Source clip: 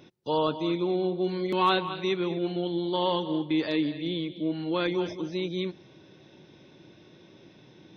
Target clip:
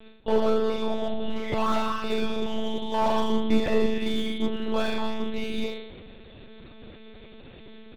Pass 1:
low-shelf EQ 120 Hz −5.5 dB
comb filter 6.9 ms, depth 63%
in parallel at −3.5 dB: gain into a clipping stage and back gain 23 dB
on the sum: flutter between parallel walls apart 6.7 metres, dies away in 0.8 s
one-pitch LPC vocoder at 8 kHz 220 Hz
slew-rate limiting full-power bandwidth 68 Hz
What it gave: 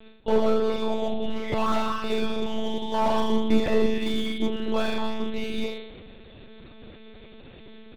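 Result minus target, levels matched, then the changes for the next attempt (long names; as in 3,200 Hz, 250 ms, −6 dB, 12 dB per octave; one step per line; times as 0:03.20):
gain into a clipping stage and back: distortion −6 dB
change: gain into a clipping stage and back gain 29 dB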